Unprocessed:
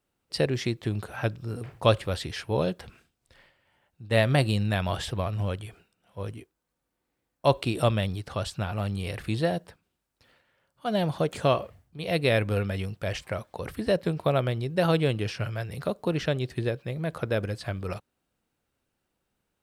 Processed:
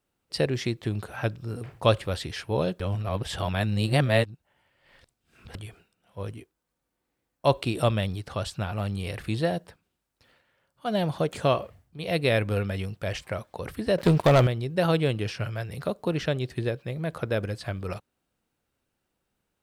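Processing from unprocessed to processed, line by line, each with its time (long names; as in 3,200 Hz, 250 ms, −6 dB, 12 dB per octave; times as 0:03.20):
0:02.80–0:05.55: reverse
0:13.98–0:14.47: leveller curve on the samples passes 3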